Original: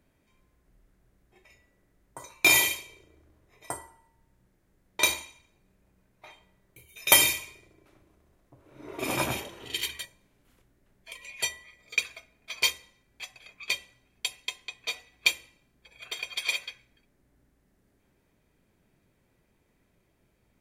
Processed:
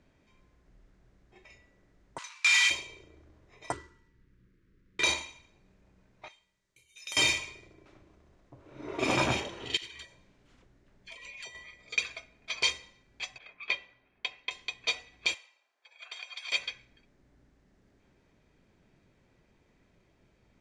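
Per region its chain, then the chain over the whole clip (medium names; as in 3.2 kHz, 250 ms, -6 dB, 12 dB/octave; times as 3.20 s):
2.18–2.70 s: square wave that keeps the level + high-pass 1.3 kHz 24 dB/octave
3.72–5.04 s: median filter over 9 samples + Butterworth band-stop 750 Hz, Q 0.87
6.28–7.17 s: pre-emphasis filter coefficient 0.9 + compression 2:1, threshold -43 dBFS + band-stop 730 Hz, Q 11
9.77–11.55 s: compression 4:1, threshold -46 dBFS + phase dispersion lows, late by 52 ms, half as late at 910 Hz
13.38–14.51 s: low-pass 2.4 kHz + bass shelf 280 Hz -11 dB
15.34–16.52 s: ladder high-pass 570 Hz, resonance 25% + compression, threshold -40 dBFS
whole clip: low-pass 6.8 kHz 24 dB/octave; peak limiter -17.5 dBFS; trim +3 dB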